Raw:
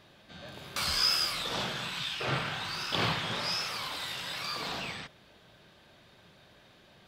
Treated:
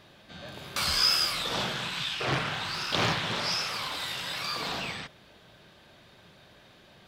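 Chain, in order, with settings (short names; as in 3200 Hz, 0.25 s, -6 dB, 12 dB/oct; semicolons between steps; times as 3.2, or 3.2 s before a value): 1.75–3.98 Doppler distortion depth 0.64 ms; gain +3 dB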